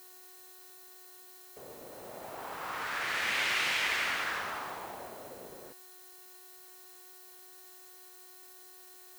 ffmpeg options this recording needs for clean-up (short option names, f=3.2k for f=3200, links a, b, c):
-af "adeclick=t=4,bandreject=f=367.8:t=h:w=4,bandreject=f=735.6:t=h:w=4,bandreject=f=1.1034k:t=h:w=4,bandreject=f=1.4712k:t=h:w=4,bandreject=f=1.839k:t=h:w=4,bandreject=f=4.1k:w=30,afftdn=nr=27:nf=-53"